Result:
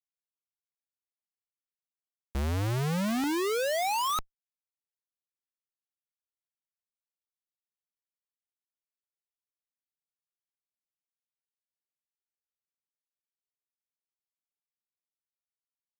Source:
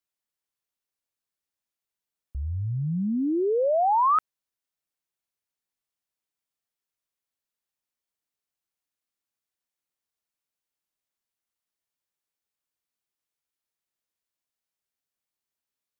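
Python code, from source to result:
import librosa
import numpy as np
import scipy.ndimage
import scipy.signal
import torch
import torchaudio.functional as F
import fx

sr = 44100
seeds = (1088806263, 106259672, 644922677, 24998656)

y = fx.law_mismatch(x, sr, coded='A')
y = fx.graphic_eq_10(y, sr, hz=(125, 250, 500, 1000, 2000), db=(6, -12, 10, 9, 5))
y = fx.schmitt(y, sr, flips_db=-30.5)
y = y * librosa.db_to_amplitude(-3.0)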